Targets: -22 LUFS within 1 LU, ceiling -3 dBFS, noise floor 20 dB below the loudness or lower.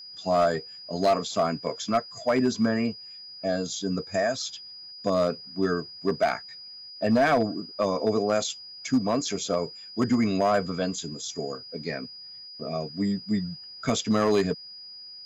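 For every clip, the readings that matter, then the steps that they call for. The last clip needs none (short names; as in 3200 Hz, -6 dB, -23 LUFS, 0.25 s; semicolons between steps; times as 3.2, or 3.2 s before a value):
clipped 0.7%; flat tops at -15.5 dBFS; steady tone 4900 Hz; tone level -41 dBFS; loudness -27.0 LUFS; peak -15.5 dBFS; loudness target -22.0 LUFS
-> clip repair -15.5 dBFS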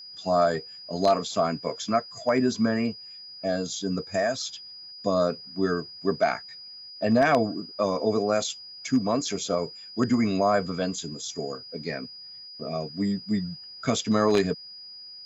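clipped 0.0%; steady tone 4900 Hz; tone level -41 dBFS
-> notch 4900 Hz, Q 30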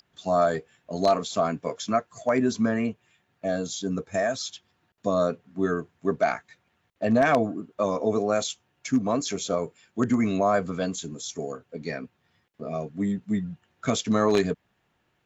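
steady tone none; loudness -27.0 LUFS; peak -6.5 dBFS; loudness target -22.0 LUFS
-> gain +5 dB; limiter -3 dBFS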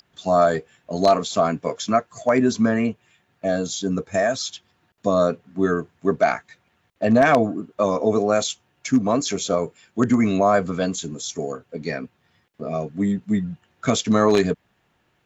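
loudness -22.0 LUFS; peak -3.0 dBFS; noise floor -67 dBFS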